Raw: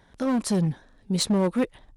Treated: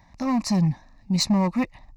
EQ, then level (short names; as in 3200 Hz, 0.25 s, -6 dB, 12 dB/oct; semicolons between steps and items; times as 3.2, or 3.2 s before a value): fixed phaser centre 2200 Hz, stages 8; +5.0 dB